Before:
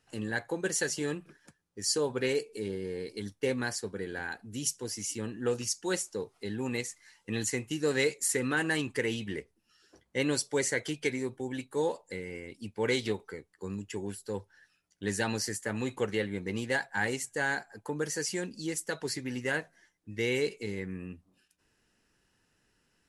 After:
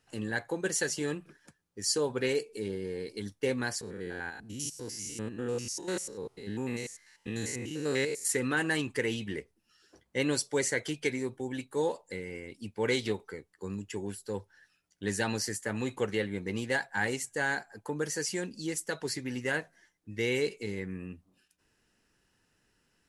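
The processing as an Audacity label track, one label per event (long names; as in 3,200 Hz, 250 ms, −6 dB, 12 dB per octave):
3.810000	8.270000	spectrum averaged block by block every 100 ms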